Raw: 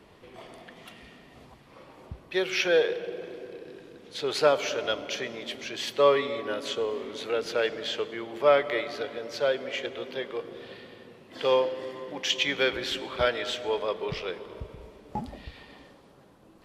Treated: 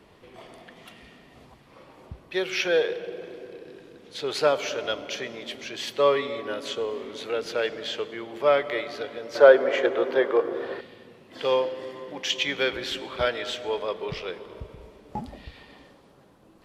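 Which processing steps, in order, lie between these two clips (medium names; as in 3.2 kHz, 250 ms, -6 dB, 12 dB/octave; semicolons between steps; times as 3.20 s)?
9.35–10.81 s: high-order bell 720 Hz +12.5 dB 3 oct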